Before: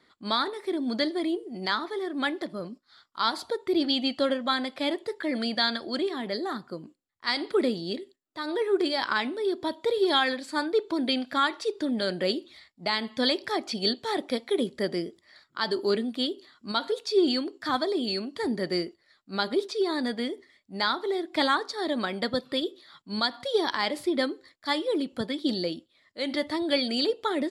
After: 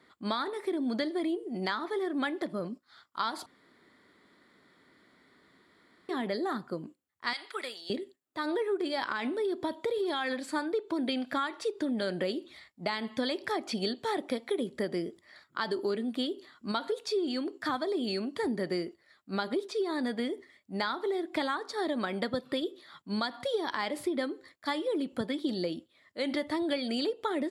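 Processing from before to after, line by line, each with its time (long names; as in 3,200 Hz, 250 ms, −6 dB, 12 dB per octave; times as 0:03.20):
0:03.46–0:06.09: fill with room tone
0:07.33–0:07.90: high-pass filter 1,300 Hz
0:09.05–0:10.42: downward compressor, threshold −24 dBFS
whole clip: high-pass filter 55 Hz; parametric band 4,600 Hz −6 dB 1.1 octaves; downward compressor, threshold −30 dBFS; level +2 dB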